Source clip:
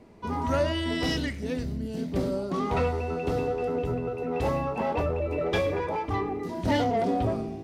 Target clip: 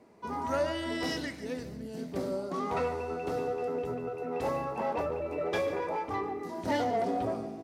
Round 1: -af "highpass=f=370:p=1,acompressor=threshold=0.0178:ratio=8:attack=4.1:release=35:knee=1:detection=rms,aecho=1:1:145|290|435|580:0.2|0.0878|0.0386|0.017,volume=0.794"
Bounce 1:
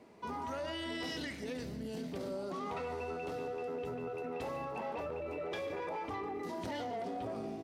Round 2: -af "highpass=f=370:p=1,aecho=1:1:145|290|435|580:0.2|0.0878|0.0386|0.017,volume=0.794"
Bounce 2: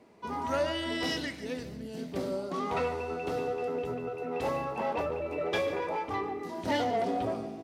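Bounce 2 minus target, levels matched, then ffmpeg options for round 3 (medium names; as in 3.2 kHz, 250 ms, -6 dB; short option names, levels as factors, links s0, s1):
4 kHz band +4.0 dB
-af "highpass=f=370:p=1,equalizer=f=3100:w=1.4:g=-5.5,aecho=1:1:145|290|435|580:0.2|0.0878|0.0386|0.017,volume=0.794"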